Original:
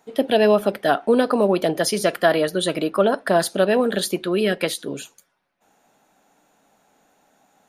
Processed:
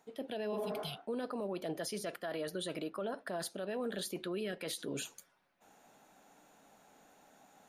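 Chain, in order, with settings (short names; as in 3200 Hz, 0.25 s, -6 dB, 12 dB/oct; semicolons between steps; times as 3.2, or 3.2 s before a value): spectral repair 0.55–0.97, 210–2100 Hz both; reverse; compressor 8:1, threshold -30 dBFS, peak gain reduction 18.5 dB; reverse; limiter -28 dBFS, peak gain reduction 10 dB; gain -2 dB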